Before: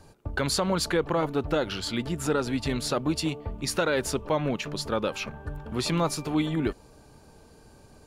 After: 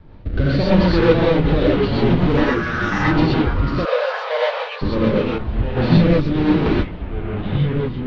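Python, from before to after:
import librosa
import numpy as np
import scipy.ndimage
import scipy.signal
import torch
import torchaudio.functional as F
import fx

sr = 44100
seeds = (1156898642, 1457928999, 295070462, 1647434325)

y = fx.halfwave_hold(x, sr)
y = scipy.signal.sosfilt(scipy.signal.butter(6, 4400.0, 'lowpass', fs=sr, output='sos'), y)
y = fx.tilt_eq(y, sr, slope=-2.0)
y = fx.ring_mod(y, sr, carrier_hz=1400.0, at=(2.37, 3.04))
y = fx.rotary(y, sr, hz=0.85)
y = fx.rev_gated(y, sr, seeds[0], gate_ms=150, shape='rising', drr_db=-6.0)
y = fx.echo_pitch(y, sr, ms=511, semitones=-3, count=2, db_per_echo=-6.0)
y = fx.brickwall_highpass(y, sr, low_hz=440.0, at=(3.84, 4.81), fade=0.02)
y = fx.band_widen(y, sr, depth_pct=70, at=(5.38, 5.97))
y = F.gain(torch.from_numpy(y), -1.0).numpy()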